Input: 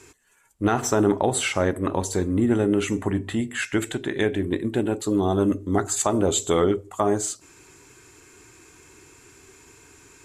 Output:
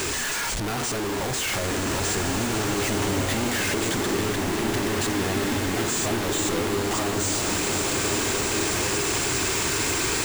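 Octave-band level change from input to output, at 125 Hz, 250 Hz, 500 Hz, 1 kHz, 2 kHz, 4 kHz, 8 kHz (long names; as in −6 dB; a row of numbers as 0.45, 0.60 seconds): 0.0, −3.0, −3.0, +1.0, +6.0, +8.5, +5.5 decibels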